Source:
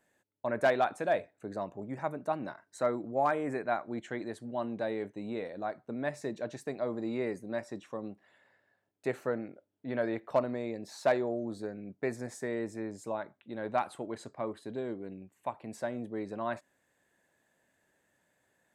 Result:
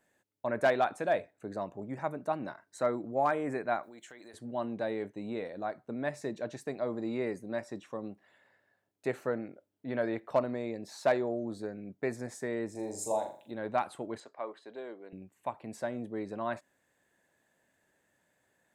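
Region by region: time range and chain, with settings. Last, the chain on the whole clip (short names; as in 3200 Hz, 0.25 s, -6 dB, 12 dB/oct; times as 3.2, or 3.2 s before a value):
3.83–4.34 RIAA curve recording + compressor 5:1, threshold -48 dBFS
12.75–13.51 EQ curve 100 Hz 0 dB, 170 Hz -7 dB, 870 Hz +7 dB, 1300 Hz -15 dB, 7400 Hz +14 dB + flutter echo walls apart 7.1 m, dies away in 0.44 s
14.2–15.13 HPF 520 Hz + air absorption 89 m
whole clip: dry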